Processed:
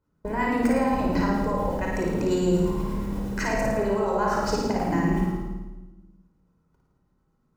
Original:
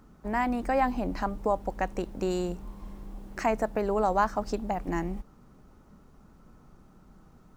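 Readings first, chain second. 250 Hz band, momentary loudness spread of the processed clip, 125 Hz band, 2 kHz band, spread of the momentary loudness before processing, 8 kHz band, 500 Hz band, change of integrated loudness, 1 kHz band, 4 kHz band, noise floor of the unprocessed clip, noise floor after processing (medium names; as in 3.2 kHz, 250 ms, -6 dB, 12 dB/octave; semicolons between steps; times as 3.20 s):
+8.0 dB, 8 LU, +10.5 dB, +5.0 dB, 15 LU, +8.5 dB, +4.5 dB, +4.5 dB, +1.0 dB, +7.5 dB, -57 dBFS, -70 dBFS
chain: gate -47 dBFS, range -30 dB; high-pass 72 Hz 6 dB/octave; in parallel at +2 dB: compressor with a negative ratio -38 dBFS, ratio -1; on the sum: peak limiter -18.5 dBFS, peak gain reduction 6.5 dB; harmonic tremolo 8.4 Hz, crossover 730 Hz; on a send: flutter echo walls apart 9.4 m, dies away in 0.93 s; on the sum: simulated room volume 3700 m³, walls furnished, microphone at 4.9 m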